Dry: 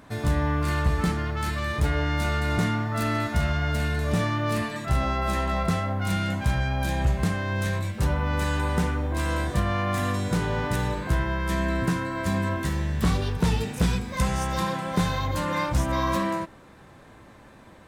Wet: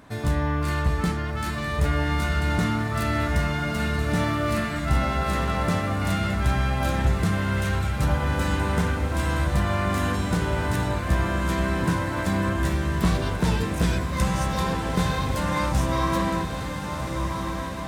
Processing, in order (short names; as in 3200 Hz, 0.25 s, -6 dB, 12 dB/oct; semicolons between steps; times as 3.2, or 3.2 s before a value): diffused feedback echo 1.387 s, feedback 59%, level -5.5 dB